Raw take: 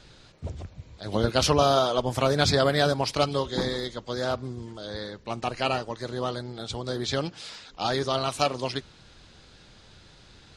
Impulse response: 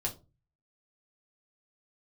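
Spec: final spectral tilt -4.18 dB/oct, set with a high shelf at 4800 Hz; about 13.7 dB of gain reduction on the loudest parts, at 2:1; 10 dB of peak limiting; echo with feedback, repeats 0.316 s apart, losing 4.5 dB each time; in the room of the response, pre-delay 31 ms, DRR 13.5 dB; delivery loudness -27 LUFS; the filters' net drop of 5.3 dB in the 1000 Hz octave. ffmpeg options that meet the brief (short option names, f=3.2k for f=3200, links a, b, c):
-filter_complex "[0:a]equalizer=f=1k:t=o:g=-8.5,highshelf=f=4.8k:g=5.5,acompressor=threshold=-44dB:ratio=2,alimiter=level_in=3.5dB:limit=-24dB:level=0:latency=1,volume=-3.5dB,aecho=1:1:316|632|948|1264|1580|1896|2212|2528|2844:0.596|0.357|0.214|0.129|0.0772|0.0463|0.0278|0.0167|0.01,asplit=2[a][b];[1:a]atrim=start_sample=2205,adelay=31[c];[b][c]afir=irnorm=-1:irlink=0,volume=-16.5dB[d];[a][d]amix=inputs=2:normalize=0,volume=12.5dB"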